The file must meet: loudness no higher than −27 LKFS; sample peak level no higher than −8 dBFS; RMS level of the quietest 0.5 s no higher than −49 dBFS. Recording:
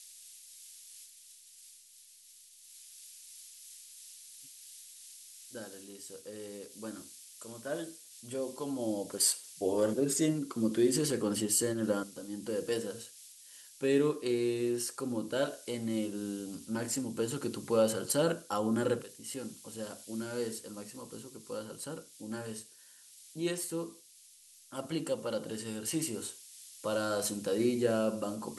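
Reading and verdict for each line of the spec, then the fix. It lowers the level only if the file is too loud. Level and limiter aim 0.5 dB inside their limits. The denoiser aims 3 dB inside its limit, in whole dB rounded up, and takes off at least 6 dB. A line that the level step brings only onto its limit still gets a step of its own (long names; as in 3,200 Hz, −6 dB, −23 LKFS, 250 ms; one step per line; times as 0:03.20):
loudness −33.5 LKFS: in spec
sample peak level −15.5 dBFS: in spec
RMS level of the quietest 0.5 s −59 dBFS: in spec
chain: no processing needed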